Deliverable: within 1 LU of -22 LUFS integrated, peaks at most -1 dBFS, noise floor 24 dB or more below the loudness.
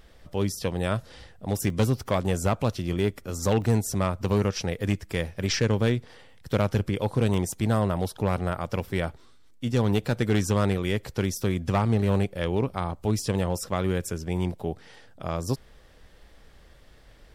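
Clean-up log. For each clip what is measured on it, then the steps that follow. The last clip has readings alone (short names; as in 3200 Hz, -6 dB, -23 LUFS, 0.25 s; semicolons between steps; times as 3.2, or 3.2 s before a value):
clipped 0.7%; flat tops at -15.5 dBFS; dropouts 3; longest dropout 1.2 ms; loudness -27.0 LUFS; peak -15.5 dBFS; loudness target -22.0 LUFS
-> clip repair -15.5 dBFS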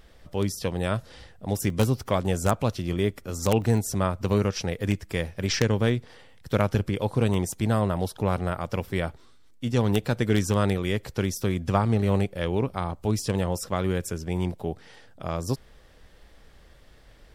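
clipped 0.0%; dropouts 3; longest dropout 1.2 ms
-> interpolate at 1.7/3.62/7.34, 1.2 ms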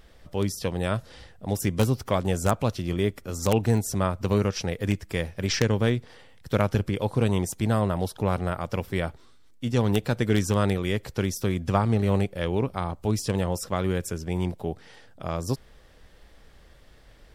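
dropouts 0; loudness -26.5 LUFS; peak -6.5 dBFS; loudness target -22.0 LUFS
-> gain +4.5 dB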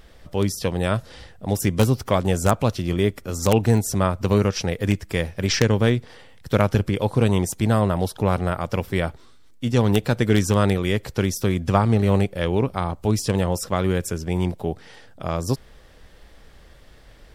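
loudness -22.0 LUFS; peak -2.0 dBFS; noise floor -48 dBFS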